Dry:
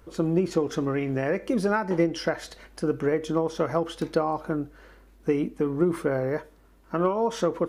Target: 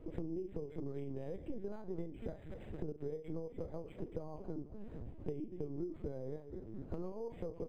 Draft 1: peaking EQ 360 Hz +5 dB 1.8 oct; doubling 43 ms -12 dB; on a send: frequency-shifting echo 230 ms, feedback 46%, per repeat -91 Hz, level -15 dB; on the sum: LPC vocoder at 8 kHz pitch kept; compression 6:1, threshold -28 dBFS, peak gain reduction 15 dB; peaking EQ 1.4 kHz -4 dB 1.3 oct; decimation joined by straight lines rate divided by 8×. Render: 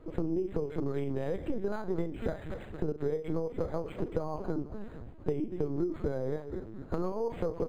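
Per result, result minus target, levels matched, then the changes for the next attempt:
compression: peak gain reduction -9 dB; 1 kHz band +4.0 dB
change: compression 6:1, threshold -38.5 dBFS, peak gain reduction 24 dB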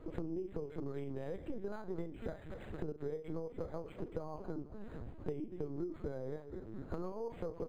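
1 kHz band +4.5 dB
change: second peaking EQ 1.4 kHz -15 dB 1.3 oct

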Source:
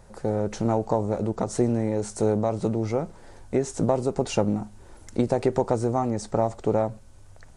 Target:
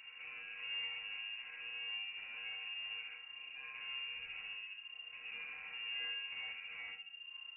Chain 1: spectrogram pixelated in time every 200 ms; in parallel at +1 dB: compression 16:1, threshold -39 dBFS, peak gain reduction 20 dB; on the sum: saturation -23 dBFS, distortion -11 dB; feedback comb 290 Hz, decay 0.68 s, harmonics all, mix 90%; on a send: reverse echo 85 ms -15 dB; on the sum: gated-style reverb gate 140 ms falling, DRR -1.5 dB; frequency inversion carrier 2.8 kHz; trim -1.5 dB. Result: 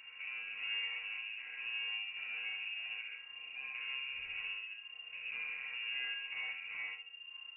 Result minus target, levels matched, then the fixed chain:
saturation: distortion -6 dB
spectrogram pixelated in time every 200 ms; in parallel at +1 dB: compression 16:1, threshold -39 dBFS, peak gain reduction 20 dB; on the sum: saturation -32 dBFS, distortion -5 dB; feedback comb 290 Hz, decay 0.68 s, harmonics all, mix 90%; on a send: reverse echo 85 ms -15 dB; on the sum: gated-style reverb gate 140 ms falling, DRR -1.5 dB; frequency inversion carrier 2.8 kHz; trim -1.5 dB

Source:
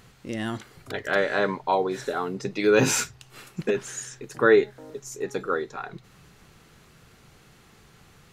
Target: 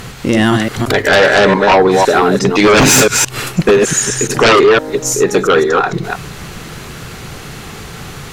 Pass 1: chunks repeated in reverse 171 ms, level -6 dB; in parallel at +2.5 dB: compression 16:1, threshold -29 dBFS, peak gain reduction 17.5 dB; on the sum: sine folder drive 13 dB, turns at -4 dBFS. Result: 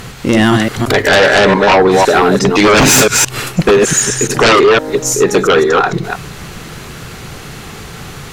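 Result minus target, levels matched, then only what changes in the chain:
compression: peak gain reduction -6.5 dB
change: compression 16:1, threshold -36 dBFS, peak gain reduction 24 dB

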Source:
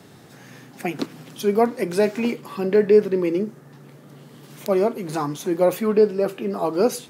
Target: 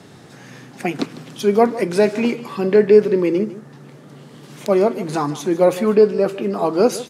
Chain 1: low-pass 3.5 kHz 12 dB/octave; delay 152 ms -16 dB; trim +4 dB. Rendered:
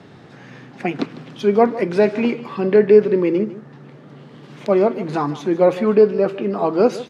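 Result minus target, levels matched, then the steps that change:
8 kHz band -12.0 dB
change: low-pass 9.6 kHz 12 dB/octave

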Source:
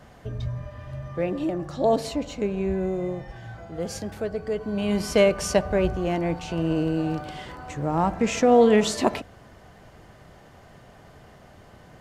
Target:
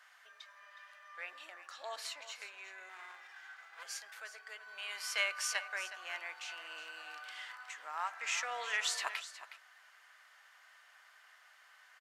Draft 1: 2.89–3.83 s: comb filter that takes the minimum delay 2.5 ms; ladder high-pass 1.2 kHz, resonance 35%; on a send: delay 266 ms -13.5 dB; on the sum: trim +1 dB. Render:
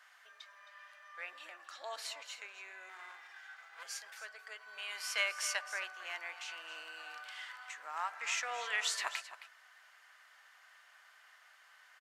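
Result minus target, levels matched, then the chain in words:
echo 99 ms early
2.89–3.83 s: comb filter that takes the minimum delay 2.5 ms; ladder high-pass 1.2 kHz, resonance 35%; on a send: delay 365 ms -13.5 dB; on the sum: trim +1 dB

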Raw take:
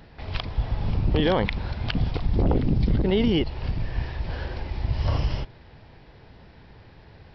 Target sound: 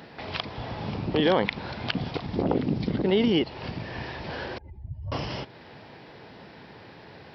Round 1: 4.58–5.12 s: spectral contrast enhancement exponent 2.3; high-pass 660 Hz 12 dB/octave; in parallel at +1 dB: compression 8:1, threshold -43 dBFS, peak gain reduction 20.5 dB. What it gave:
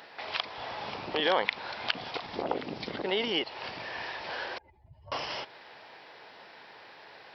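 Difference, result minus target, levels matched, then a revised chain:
250 Hz band -8.5 dB
4.58–5.12 s: spectral contrast enhancement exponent 2.3; high-pass 190 Hz 12 dB/octave; in parallel at +1 dB: compression 8:1, threshold -43 dBFS, peak gain reduction 24 dB

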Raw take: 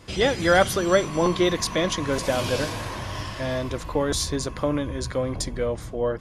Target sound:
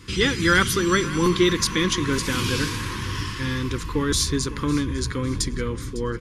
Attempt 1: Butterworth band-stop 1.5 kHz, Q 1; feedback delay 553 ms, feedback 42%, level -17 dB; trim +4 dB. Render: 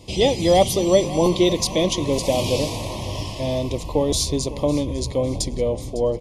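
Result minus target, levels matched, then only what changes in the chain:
2 kHz band -13.0 dB
change: Butterworth band-stop 660 Hz, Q 1

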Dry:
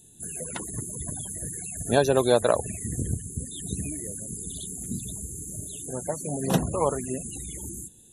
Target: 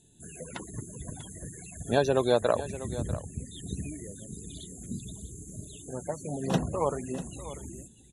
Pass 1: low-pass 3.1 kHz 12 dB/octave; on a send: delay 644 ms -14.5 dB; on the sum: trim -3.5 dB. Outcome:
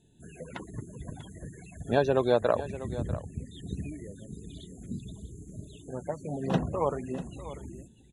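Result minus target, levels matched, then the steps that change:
8 kHz band -13.0 dB
change: low-pass 6.4 kHz 12 dB/octave

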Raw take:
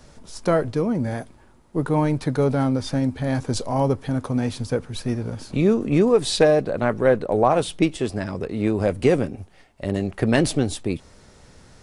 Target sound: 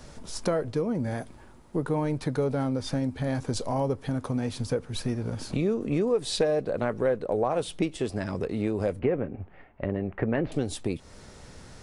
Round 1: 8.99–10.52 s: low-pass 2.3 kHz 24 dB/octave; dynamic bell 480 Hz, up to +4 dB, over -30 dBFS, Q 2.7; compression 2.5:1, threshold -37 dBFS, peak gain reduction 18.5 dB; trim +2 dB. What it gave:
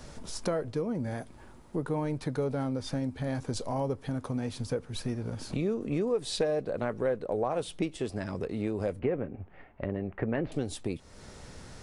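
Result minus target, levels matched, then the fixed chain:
compression: peak gain reduction +4 dB
8.99–10.52 s: low-pass 2.3 kHz 24 dB/octave; dynamic bell 480 Hz, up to +4 dB, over -30 dBFS, Q 2.7; compression 2.5:1, threshold -30.5 dBFS, peak gain reduction 14.5 dB; trim +2 dB

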